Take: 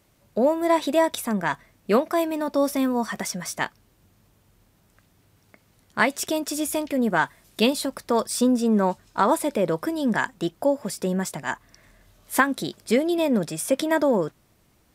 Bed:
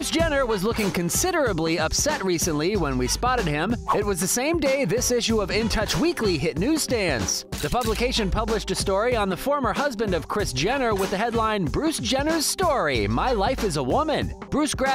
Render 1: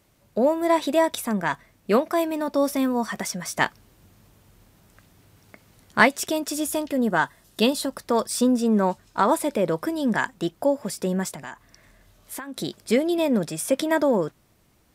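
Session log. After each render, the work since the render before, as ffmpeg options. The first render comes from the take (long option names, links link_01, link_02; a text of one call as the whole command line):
ffmpeg -i in.wav -filter_complex "[0:a]asplit=3[link_01][link_02][link_03];[link_01]afade=type=out:start_time=3.56:duration=0.02[link_04];[link_02]acontrast=28,afade=type=in:start_time=3.56:duration=0.02,afade=type=out:start_time=6.07:duration=0.02[link_05];[link_03]afade=type=in:start_time=6.07:duration=0.02[link_06];[link_04][link_05][link_06]amix=inputs=3:normalize=0,asettb=1/sr,asplit=3[link_07][link_08][link_09];[link_07]atrim=end=6.594[link_10];[link_08]atrim=start=6.59:end=8.01,asetpts=PTS-STARTPTS,afade=type=in:duration=0.004:curve=qsin,afade=type=out:start_time=1.416:duration=0.004:curve=qsin,bandreject=frequency=2300:width=6[link_11];[link_09]atrim=start=8.006[link_12];[link_10][link_11]acrossfade=duration=0.004:curve1=hsin:curve2=qsin[link_13];[link_13][link_12]acrossfade=duration=0.004:curve1=qsin:curve2=hsin,asettb=1/sr,asplit=3[link_14][link_15][link_16];[link_14]atrim=end=11.334[link_17];[link_15]atrim=start=11.33:end=12.57,asetpts=PTS-STARTPTS,afade=type=in:duration=0.004:curve=qsin,afade=type=out:start_time=1.236:duration=0.004:curve=qsin,acompressor=threshold=-32dB:ratio=6:attack=3.2:release=140:knee=1:detection=peak[link_18];[link_16]atrim=start=12.566[link_19];[link_17][link_18]acrossfade=duration=0.004:curve1=hsin:curve2=qsin[link_20];[link_20][link_19]acrossfade=duration=0.004:curve1=qsin:curve2=hsin" out.wav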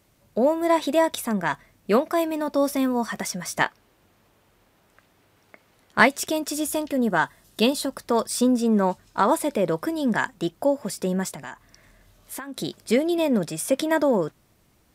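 ffmpeg -i in.wav -filter_complex "[0:a]asettb=1/sr,asplit=3[link_01][link_02][link_03];[link_01]atrim=end=3.624[link_04];[link_02]atrim=start=3.62:end=5.98,asetpts=PTS-STARTPTS,afade=type=in:duration=0.004:curve=qsin,afade=type=out:start_time=2.356:duration=0.004:curve=qsin,bass=frequency=250:gain=-11,treble=frequency=4000:gain=-7[link_05];[link_03]atrim=start=5.976[link_06];[link_04][link_05]acrossfade=duration=0.004:curve1=hsin:curve2=qsin[link_07];[link_07][link_06]acrossfade=duration=0.004:curve1=qsin:curve2=hsin" out.wav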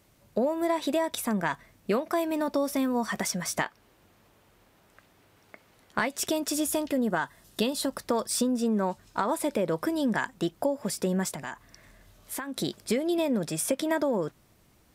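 ffmpeg -i in.wav -af "alimiter=limit=-10.5dB:level=0:latency=1:release=233,acompressor=threshold=-23dB:ratio=6" out.wav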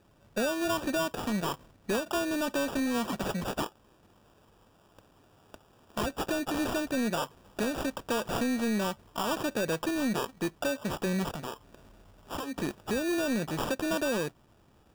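ffmpeg -i in.wav -af "acrusher=samples=21:mix=1:aa=0.000001,asoftclip=type=tanh:threshold=-23.5dB" out.wav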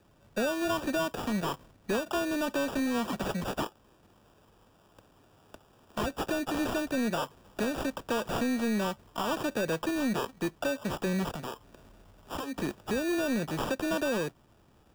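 ffmpeg -i in.wav -filter_complex "[0:a]acrossover=split=430|630|2000[link_01][link_02][link_03][link_04];[link_04]asoftclip=type=tanh:threshold=-31dB[link_05];[link_01][link_02][link_03][link_05]amix=inputs=4:normalize=0,acrusher=bits=9:mode=log:mix=0:aa=0.000001" out.wav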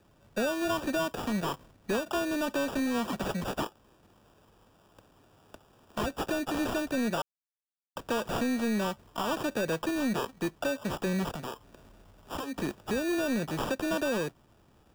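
ffmpeg -i in.wav -filter_complex "[0:a]asplit=3[link_01][link_02][link_03];[link_01]atrim=end=7.22,asetpts=PTS-STARTPTS,afade=type=out:start_time=7.216:duration=0.004:curve=hsin[link_04];[link_02]atrim=start=7.22:end=7.96,asetpts=PTS-STARTPTS,volume=0[link_05];[link_03]atrim=start=7.96,asetpts=PTS-STARTPTS,afade=type=in:duration=0.004:curve=hsin[link_06];[link_04][link_05][link_06]concat=n=3:v=0:a=1" out.wav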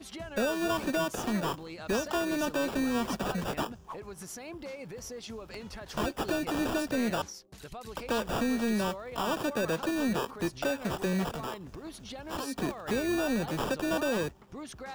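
ffmpeg -i in.wav -i bed.wav -filter_complex "[1:a]volume=-20dB[link_01];[0:a][link_01]amix=inputs=2:normalize=0" out.wav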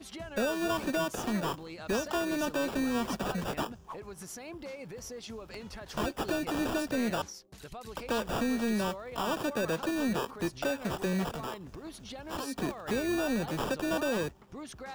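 ffmpeg -i in.wav -af "volume=-1dB" out.wav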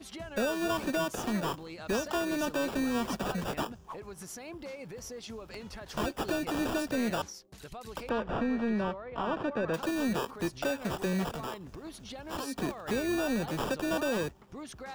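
ffmpeg -i in.wav -filter_complex "[0:a]asettb=1/sr,asplit=3[link_01][link_02][link_03];[link_01]atrim=end=8.094[link_04];[link_02]atrim=start=8.09:end=9.74,asetpts=PTS-STARTPTS,afade=type=in:duration=0.004:curve=qsin,afade=type=out:start_time=1.646:duration=0.004:curve=qsin,lowpass=2200[link_05];[link_03]atrim=start=9.736[link_06];[link_04][link_05]acrossfade=duration=0.004:curve1=hsin:curve2=qsin[link_07];[link_07][link_06]acrossfade=duration=0.004:curve1=qsin:curve2=hsin" out.wav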